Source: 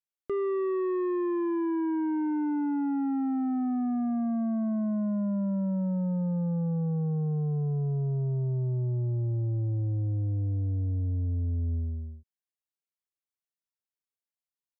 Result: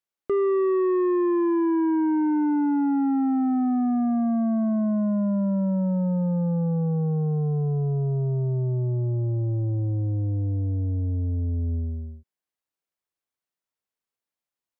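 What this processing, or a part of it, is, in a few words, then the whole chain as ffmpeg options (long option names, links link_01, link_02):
behind a face mask: -af "lowshelf=frequency=210:gain=-6.5,highshelf=frequency=2100:gain=-8,volume=8.5dB"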